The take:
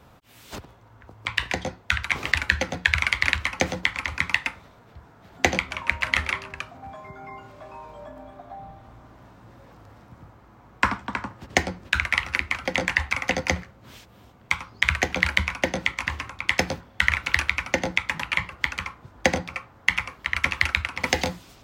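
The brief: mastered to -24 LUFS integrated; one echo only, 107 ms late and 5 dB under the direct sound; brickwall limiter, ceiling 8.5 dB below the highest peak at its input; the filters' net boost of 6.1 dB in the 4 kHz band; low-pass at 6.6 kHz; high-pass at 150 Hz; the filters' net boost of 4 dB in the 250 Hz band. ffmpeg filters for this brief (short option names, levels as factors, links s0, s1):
-af "highpass=150,lowpass=6600,equalizer=f=250:t=o:g=6,equalizer=f=4000:t=o:g=8.5,alimiter=limit=0.531:level=0:latency=1,aecho=1:1:107:0.562,volume=1.06"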